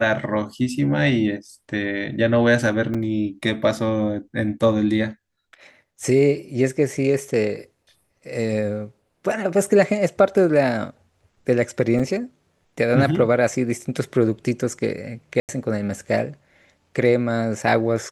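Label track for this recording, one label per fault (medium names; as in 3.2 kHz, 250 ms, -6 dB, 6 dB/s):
2.940000	2.950000	dropout 5.7 ms
11.990000	12.000000	dropout 5.7 ms
15.400000	15.490000	dropout 88 ms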